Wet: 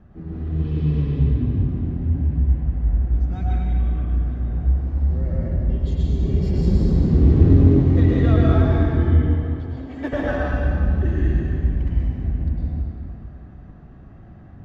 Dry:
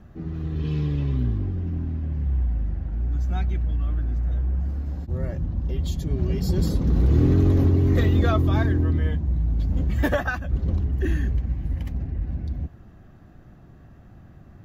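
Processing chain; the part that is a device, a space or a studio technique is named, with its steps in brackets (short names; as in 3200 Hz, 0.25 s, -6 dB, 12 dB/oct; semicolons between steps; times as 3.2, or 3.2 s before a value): 9.11–10.13 Chebyshev high-pass 250 Hz, order 6; dynamic EQ 1200 Hz, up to -4 dB, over -43 dBFS, Q 0.73; air absorption 73 m; swimming-pool hall (reverb RT60 2.7 s, pre-delay 97 ms, DRR -6 dB; high shelf 3400 Hz -8 dB); gain -2 dB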